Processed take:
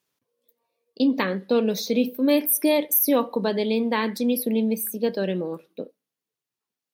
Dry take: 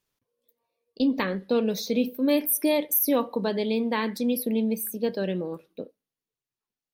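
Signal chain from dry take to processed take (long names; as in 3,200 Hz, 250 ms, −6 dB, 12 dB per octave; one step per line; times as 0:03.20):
high-pass filter 140 Hz
level +3 dB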